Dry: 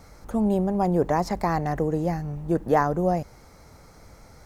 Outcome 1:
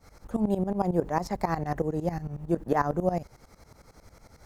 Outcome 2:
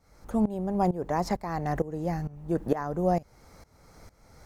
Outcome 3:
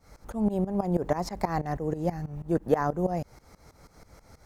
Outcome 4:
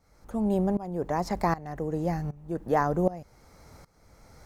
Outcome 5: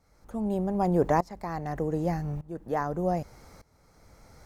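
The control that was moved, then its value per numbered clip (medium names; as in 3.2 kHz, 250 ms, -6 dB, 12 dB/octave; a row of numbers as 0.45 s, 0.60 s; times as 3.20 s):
tremolo, rate: 11 Hz, 2.2 Hz, 6.2 Hz, 1.3 Hz, 0.83 Hz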